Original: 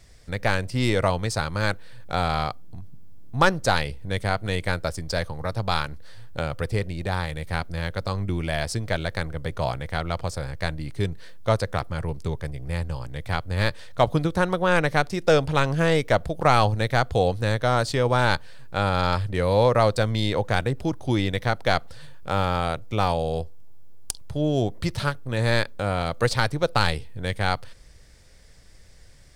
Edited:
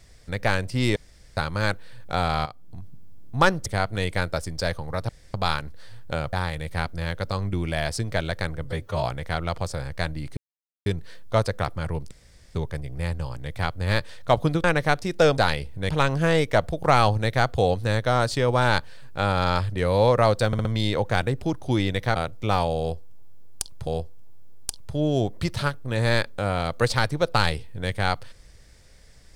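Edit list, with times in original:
0.96–1.37 room tone
2.46–2.79 fade in, from -13.5 dB
3.66–4.17 move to 15.46
5.6 insert room tone 0.25 s
6.59–7.09 cut
9.4–9.66 stretch 1.5×
11 insert silence 0.49 s
12.25 insert room tone 0.44 s
14.34–14.72 cut
20.04 stutter 0.06 s, 4 plays
21.55–22.65 cut
23.28–24.36 loop, 2 plays

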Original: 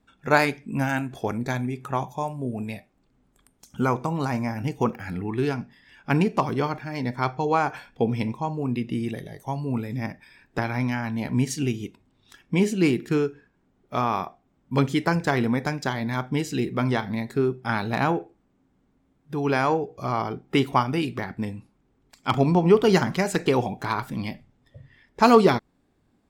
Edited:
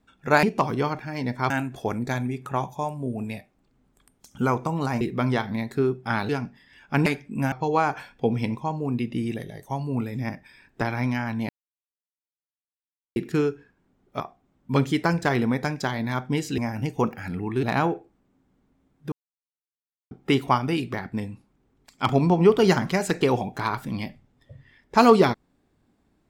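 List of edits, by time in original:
0.43–0.89 swap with 6.22–7.29
4.4–5.45 swap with 16.6–17.88
11.26–12.93 mute
13.97–14.22 cut
19.37–20.36 mute

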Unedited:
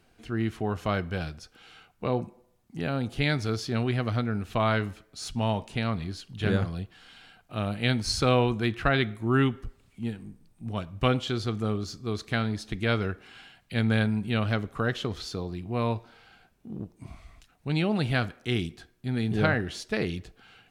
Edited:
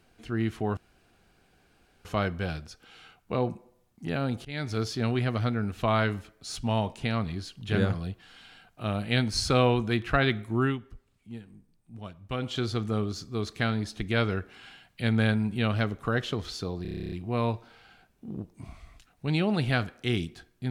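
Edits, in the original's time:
0.77 insert room tone 1.28 s
3.17–3.52 fade in, from -23.5 dB
9.28–11.3 dip -9 dB, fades 0.20 s
15.54 stutter 0.03 s, 11 plays

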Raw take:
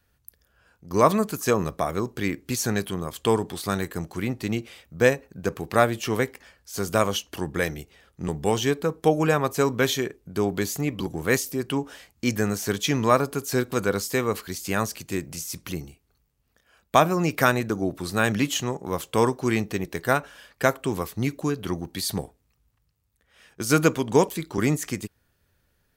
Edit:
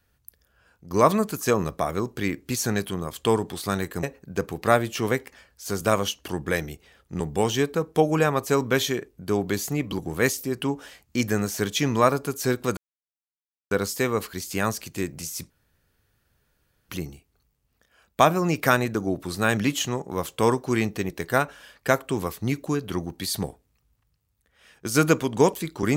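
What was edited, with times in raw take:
4.03–5.11 cut
13.85 insert silence 0.94 s
15.64 insert room tone 1.39 s

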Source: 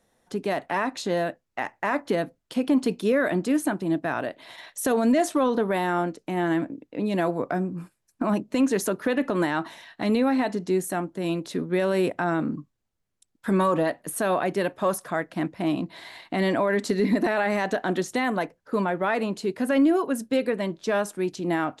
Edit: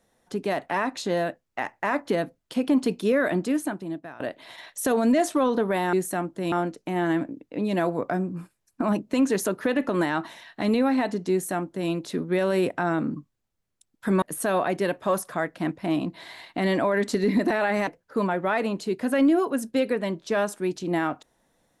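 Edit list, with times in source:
3.36–4.2 fade out, to -19.5 dB
10.72–11.31 copy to 5.93
13.63–13.98 cut
17.63–18.44 cut

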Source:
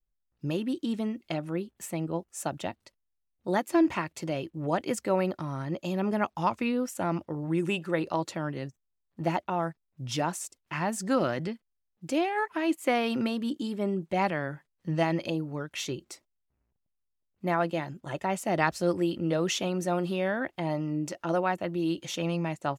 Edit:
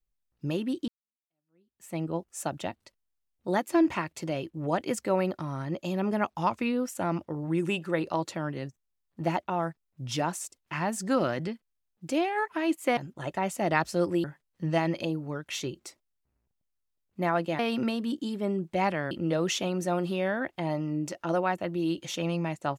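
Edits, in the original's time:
0.88–1.96 fade in exponential
12.97–14.49 swap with 17.84–19.11

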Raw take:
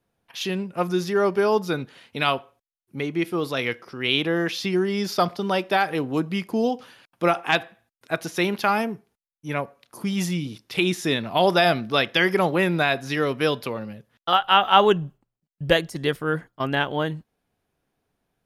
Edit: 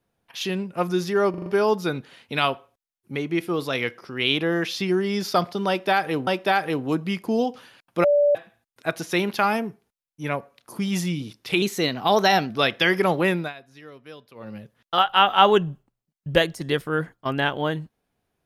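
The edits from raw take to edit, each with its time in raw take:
1.3 stutter 0.04 s, 5 plays
5.52–6.11 loop, 2 plays
7.29–7.6 bleep 581 Hz -14.5 dBFS
10.87–11.84 speed 111%
12.65–13.92 dip -20.5 dB, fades 0.23 s

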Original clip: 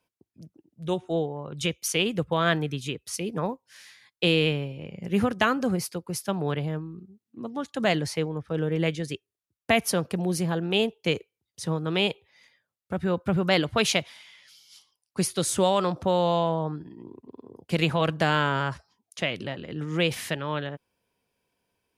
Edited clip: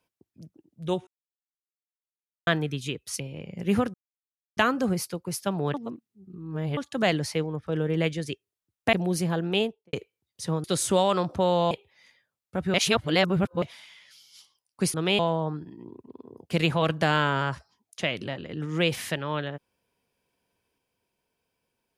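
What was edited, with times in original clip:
1.07–2.47 mute
3.2–4.65 cut
5.39 insert silence 0.63 s
6.56–7.59 reverse
9.75–10.12 cut
10.7–11.12 studio fade out
11.83–12.08 swap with 15.31–16.38
13.11–13.99 reverse

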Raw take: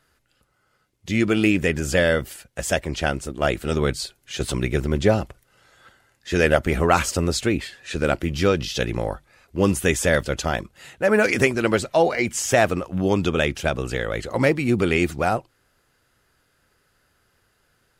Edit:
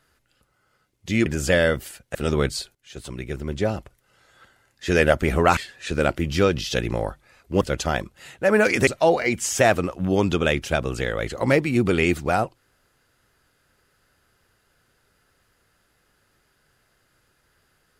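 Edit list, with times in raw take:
1.26–1.71 cut
2.6–3.59 cut
4.19–6.3 fade in, from -15.5 dB
7.01–7.61 cut
9.65–10.2 cut
11.46–11.8 cut

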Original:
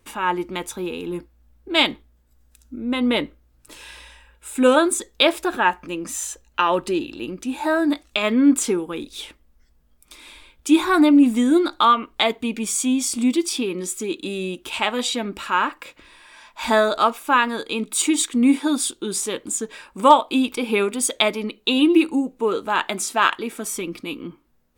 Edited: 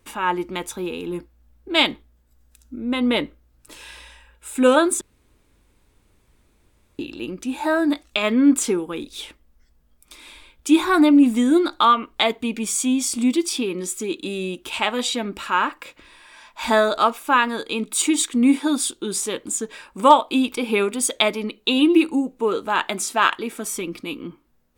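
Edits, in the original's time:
5.01–6.99 room tone

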